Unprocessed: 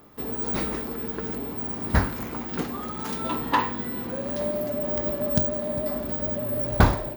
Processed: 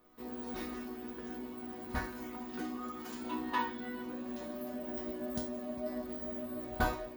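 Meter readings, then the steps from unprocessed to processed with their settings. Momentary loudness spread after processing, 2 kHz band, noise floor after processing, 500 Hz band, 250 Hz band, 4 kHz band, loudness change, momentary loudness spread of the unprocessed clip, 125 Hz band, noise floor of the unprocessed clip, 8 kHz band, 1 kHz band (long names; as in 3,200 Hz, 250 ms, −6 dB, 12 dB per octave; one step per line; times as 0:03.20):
8 LU, −9.0 dB, −46 dBFS, −12.5 dB, −9.0 dB, −11.0 dB, −13.0 dB, 7 LU, −20.0 dB, −34 dBFS, −11.0 dB, −10.0 dB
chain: resonators tuned to a chord B3 major, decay 0.32 s
level +7 dB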